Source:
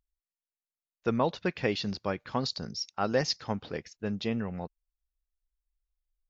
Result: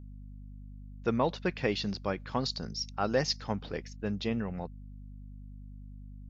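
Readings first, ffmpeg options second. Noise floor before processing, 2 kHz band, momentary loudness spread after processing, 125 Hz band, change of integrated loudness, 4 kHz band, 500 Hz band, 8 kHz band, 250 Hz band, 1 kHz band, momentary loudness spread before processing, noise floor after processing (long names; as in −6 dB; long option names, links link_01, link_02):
below −85 dBFS, −1.0 dB, 19 LU, 0.0 dB, −1.0 dB, −1.0 dB, −1.0 dB, can't be measured, −0.5 dB, −1.0 dB, 8 LU, −46 dBFS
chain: -af "aeval=exprs='val(0)+0.00631*(sin(2*PI*50*n/s)+sin(2*PI*2*50*n/s)/2+sin(2*PI*3*50*n/s)/3+sin(2*PI*4*50*n/s)/4+sin(2*PI*5*50*n/s)/5)':channel_layout=same,acontrast=89,volume=-8dB"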